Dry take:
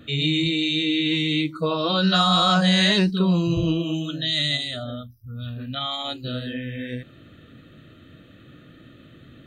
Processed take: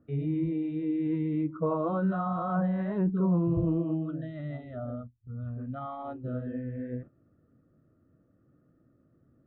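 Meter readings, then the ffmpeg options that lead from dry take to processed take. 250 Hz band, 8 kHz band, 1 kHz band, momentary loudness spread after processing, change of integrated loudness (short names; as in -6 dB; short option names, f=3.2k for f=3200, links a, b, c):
-6.0 dB, under -40 dB, -9.5 dB, 12 LU, -9.5 dB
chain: -af "agate=range=-13dB:threshold=-38dB:ratio=16:detection=peak,alimiter=limit=-15dB:level=0:latency=1:release=24,lowpass=f=1.2k:w=0.5412,lowpass=f=1.2k:w=1.3066,volume=-4dB"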